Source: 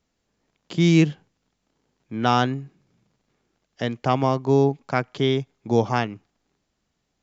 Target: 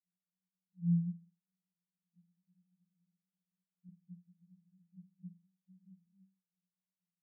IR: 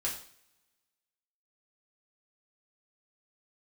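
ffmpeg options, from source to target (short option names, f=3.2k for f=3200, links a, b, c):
-filter_complex "[0:a]asuperpass=centerf=180:order=12:qfactor=7.6,asettb=1/sr,asplit=3[a][b][c];[a]atrim=end=3.884[d];[b]atrim=start=3.88:end=6.06,asetpts=PTS-STARTPTS,afade=t=in:d=0.004:c=qsin,afade=t=out:st=2.176:d=0.004:c=qsin,aecho=1:1:5.7:0.65,atrim=end_sample=96138[e];[c]atrim=start=6.056[f];[d][e]acrossfade=d=0.004:c1=hsin:c2=qsin[g];[g][f]acrossfade=d=0.004:c1=qsin:c2=hsin,volume=-8.5dB"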